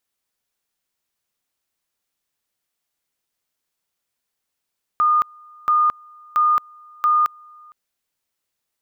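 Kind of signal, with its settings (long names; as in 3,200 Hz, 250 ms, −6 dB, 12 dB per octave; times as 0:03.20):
tone at two levels in turn 1,220 Hz −13 dBFS, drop 29 dB, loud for 0.22 s, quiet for 0.46 s, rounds 4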